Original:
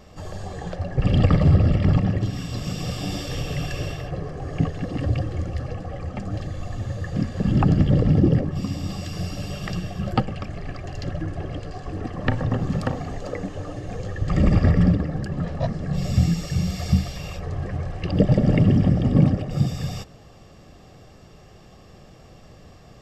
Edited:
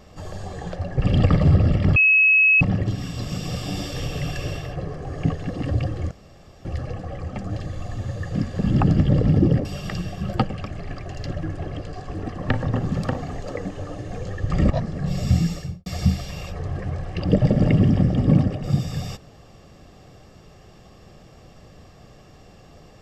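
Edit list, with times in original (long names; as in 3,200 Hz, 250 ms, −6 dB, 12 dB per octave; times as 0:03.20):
0:01.96: insert tone 2,570 Hz −12 dBFS 0.65 s
0:05.46: splice in room tone 0.54 s
0:08.46–0:09.43: remove
0:14.48–0:15.57: remove
0:16.36–0:16.73: fade out and dull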